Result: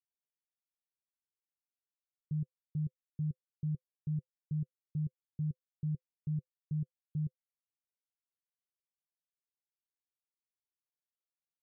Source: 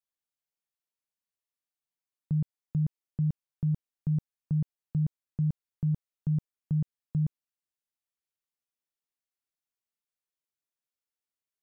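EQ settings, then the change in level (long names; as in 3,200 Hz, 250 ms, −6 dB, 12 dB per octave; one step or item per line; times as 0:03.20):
Chebyshev low-pass with heavy ripple 530 Hz, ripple 9 dB
−6.5 dB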